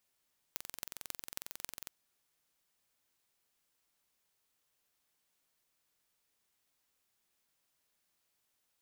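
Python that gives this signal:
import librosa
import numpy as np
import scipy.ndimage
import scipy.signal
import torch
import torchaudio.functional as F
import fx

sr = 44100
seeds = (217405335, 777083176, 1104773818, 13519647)

y = fx.impulse_train(sr, length_s=1.32, per_s=22.1, accent_every=6, level_db=-10.0)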